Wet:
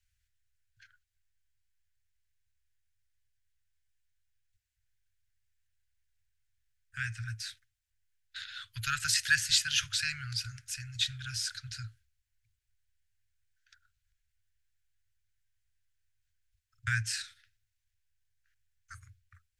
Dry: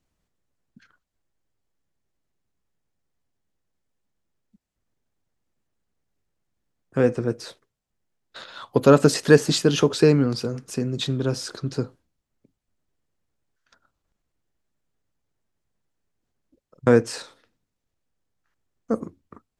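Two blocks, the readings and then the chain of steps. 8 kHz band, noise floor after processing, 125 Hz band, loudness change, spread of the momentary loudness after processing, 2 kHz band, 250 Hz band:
-0.5 dB, -82 dBFS, -15.0 dB, -10.5 dB, 17 LU, -0.5 dB, under -30 dB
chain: Chebyshev band-stop 110–1500 Hz, order 5

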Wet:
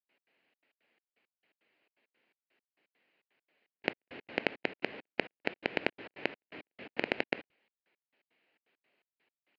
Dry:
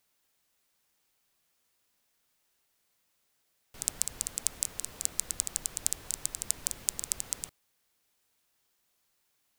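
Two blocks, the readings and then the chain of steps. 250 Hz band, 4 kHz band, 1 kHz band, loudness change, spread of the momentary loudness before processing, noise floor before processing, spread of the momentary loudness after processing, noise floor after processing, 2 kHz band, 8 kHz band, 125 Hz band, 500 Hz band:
+13.0 dB, -2.5 dB, +10.0 dB, -4.5 dB, 3 LU, -75 dBFS, 8 LU, under -85 dBFS, +14.5 dB, under -40 dB, -1.0 dB, +16.5 dB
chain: minimum comb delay 0.42 ms; steep low-pass 3300 Hz 36 dB/oct; in parallel at 0 dB: negative-ratio compressor -38 dBFS; on the sum: step gate ".x.xxx.x.xx..x." 168 bpm -60 dB; Chebyshev high-pass 320 Hz, order 2; gain +2.5 dB

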